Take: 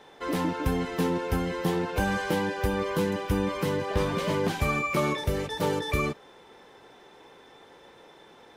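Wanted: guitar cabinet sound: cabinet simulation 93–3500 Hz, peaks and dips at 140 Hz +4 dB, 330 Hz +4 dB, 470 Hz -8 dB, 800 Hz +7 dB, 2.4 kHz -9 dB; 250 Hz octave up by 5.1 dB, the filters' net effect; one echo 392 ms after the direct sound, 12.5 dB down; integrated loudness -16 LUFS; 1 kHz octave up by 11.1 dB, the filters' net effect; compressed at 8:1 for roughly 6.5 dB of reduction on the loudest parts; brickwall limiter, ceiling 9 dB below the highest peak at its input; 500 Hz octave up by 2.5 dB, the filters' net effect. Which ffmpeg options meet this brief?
-af "equalizer=f=250:t=o:g=4,equalizer=f=500:t=o:g=3,equalizer=f=1000:t=o:g=8.5,acompressor=threshold=0.0631:ratio=8,alimiter=limit=0.0794:level=0:latency=1,highpass=93,equalizer=f=140:t=q:w=4:g=4,equalizer=f=330:t=q:w=4:g=4,equalizer=f=470:t=q:w=4:g=-8,equalizer=f=800:t=q:w=4:g=7,equalizer=f=2400:t=q:w=4:g=-9,lowpass=f=3500:w=0.5412,lowpass=f=3500:w=1.3066,aecho=1:1:392:0.237,volume=5.01"

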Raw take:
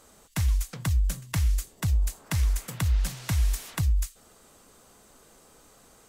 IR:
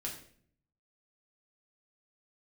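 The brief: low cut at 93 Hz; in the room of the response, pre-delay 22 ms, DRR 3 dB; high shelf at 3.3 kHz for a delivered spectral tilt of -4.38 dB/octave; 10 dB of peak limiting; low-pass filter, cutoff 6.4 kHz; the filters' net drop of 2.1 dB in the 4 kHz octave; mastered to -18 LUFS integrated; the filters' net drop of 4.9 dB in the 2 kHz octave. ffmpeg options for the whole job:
-filter_complex "[0:a]highpass=93,lowpass=6400,equalizer=f=2000:t=o:g=-7,highshelf=f=3300:g=6.5,equalizer=f=4000:t=o:g=-5,alimiter=level_in=1.58:limit=0.0631:level=0:latency=1,volume=0.631,asplit=2[s0][s1];[1:a]atrim=start_sample=2205,adelay=22[s2];[s1][s2]afir=irnorm=-1:irlink=0,volume=0.708[s3];[s0][s3]amix=inputs=2:normalize=0,volume=7.94"

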